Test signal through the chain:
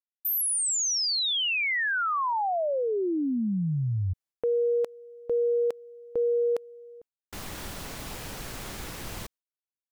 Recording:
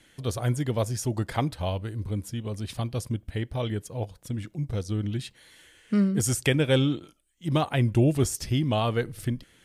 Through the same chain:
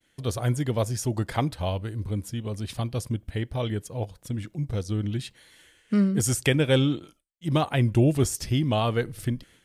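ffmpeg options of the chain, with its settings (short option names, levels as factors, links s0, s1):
-af "agate=range=0.0224:threshold=0.00282:ratio=3:detection=peak,volume=1.12"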